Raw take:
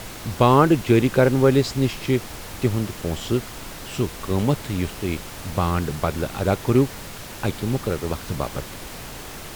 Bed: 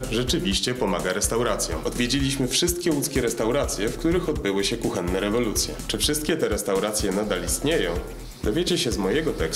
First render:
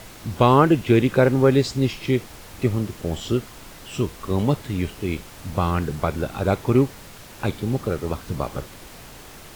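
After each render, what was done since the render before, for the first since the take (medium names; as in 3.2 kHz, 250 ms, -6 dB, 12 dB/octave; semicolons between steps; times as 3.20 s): noise print and reduce 6 dB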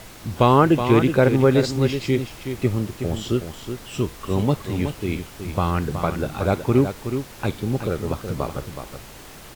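delay 371 ms -8.5 dB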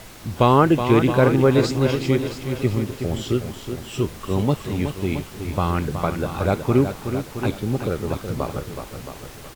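feedback delay 670 ms, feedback 29%, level -11 dB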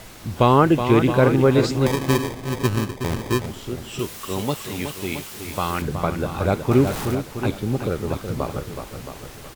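1.86–3.46 s: sample-rate reducer 1.4 kHz; 3.99–5.82 s: tilt EQ +2.5 dB/octave; 6.71–7.15 s: jump at every zero crossing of -25.5 dBFS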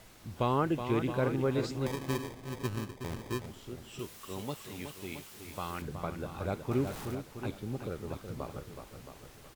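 trim -14 dB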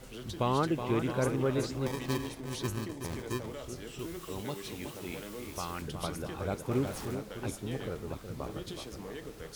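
add bed -20.5 dB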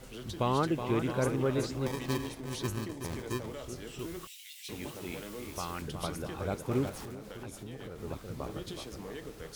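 4.27–4.69 s: steep high-pass 2.1 kHz 48 dB/octave; 6.89–8.00 s: compression, threshold -39 dBFS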